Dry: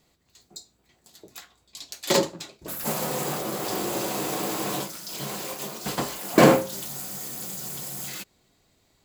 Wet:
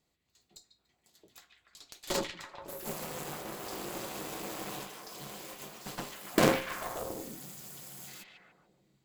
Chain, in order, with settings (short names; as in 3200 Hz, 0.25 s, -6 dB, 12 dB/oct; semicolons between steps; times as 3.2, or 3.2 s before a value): delay with a stepping band-pass 0.144 s, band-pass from 2500 Hz, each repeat -0.7 oct, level -0.5 dB; added harmonics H 3 -17 dB, 6 -15 dB, 8 -14 dB, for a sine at -3.5 dBFS; gain -8 dB